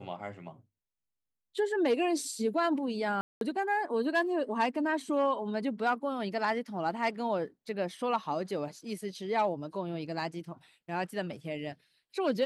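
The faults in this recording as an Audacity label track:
3.210000	3.410000	gap 0.202 s

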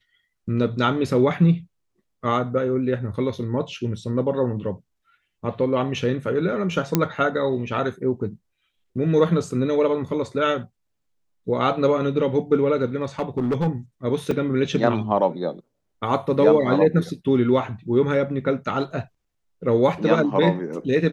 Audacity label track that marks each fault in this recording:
6.950000	6.950000	pop -4 dBFS
13.020000	13.680000	clipped -17.5 dBFS
14.310000	14.310000	gap 3.3 ms

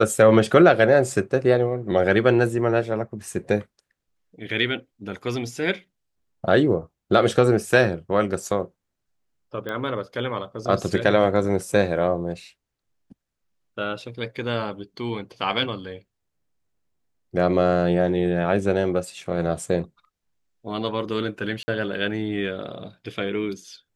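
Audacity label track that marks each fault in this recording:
9.690000	9.690000	pop -18 dBFS
21.630000	21.680000	gap 50 ms

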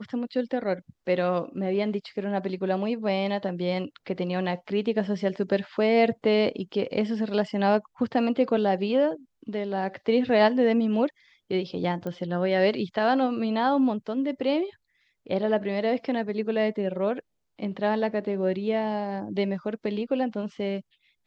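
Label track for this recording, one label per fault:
12.070000	12.070000	pop -22 dBFS

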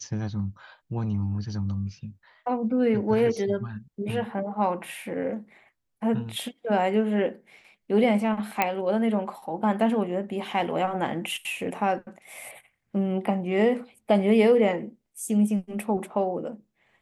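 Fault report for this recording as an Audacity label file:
8.620000	8.620000	pop -8 dBFS

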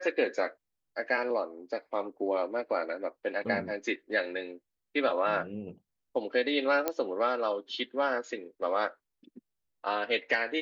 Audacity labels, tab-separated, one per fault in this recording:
6.880000	6.880000	pop -13 dBFS

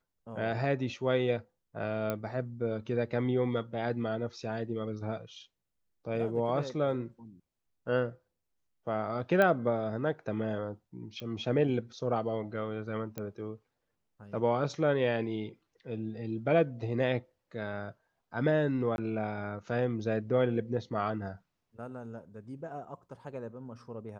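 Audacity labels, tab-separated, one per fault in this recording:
2.100000	2.100000	pop -19 dBFS
9.420000	9.420000	pop -15 dBFS
11.200000	11.200000	pop -28 dBFS
13.180000	13.180000	pop -22 dBFS
18.960000	18.980000	gap 21 ms

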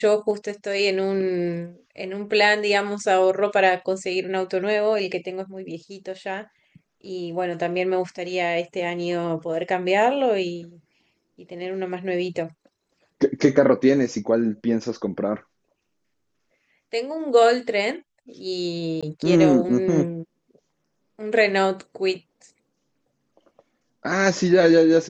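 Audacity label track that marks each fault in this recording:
19.010000	19.030000	gap 16 ms

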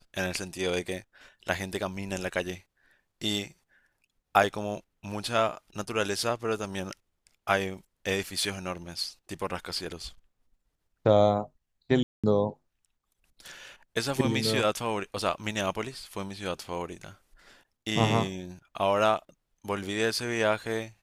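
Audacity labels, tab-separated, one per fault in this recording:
12.030000	12.240000	gap 0.206 s

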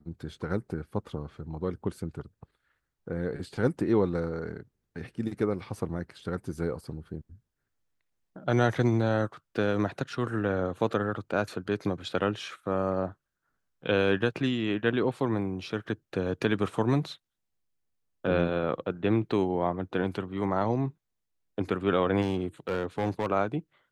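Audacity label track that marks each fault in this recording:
22.210000	23.270000	clipped -23 dBFS

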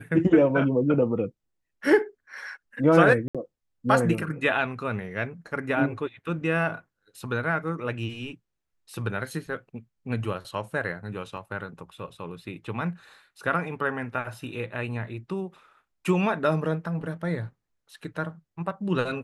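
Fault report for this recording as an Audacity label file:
3.280000	3.350000	gap 66 ms
11.370000	11.380000	gap 5.5 ms

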